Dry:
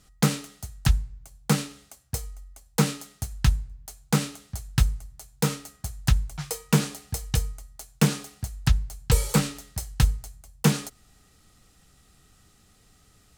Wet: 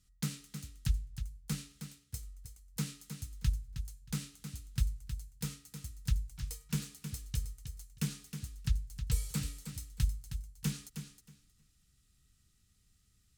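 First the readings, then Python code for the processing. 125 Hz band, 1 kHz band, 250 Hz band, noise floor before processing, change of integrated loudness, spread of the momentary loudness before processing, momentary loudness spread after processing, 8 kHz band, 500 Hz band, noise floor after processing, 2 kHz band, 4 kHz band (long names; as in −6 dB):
−11.5 dB, −23.0 dB, −14.5 dB, −60 dBFS, −12.5 dB, 15 LU, 11 LU, −12.0 dB, −24.5 dB, −71 dBFS, −16.5 dB, −13.0 dB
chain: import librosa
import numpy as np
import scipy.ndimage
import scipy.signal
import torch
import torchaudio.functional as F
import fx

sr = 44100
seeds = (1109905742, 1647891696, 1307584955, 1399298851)

p1 = fx.tone_stack(x, sr, knobs='6-0-2')
p2 = p1 + fx.echo_feedback(p1, sr, ms=315, feedback_pct=18, wet_db=-9, dry=0)
y = p2 * 10.0 ** (2.0 / 20.0)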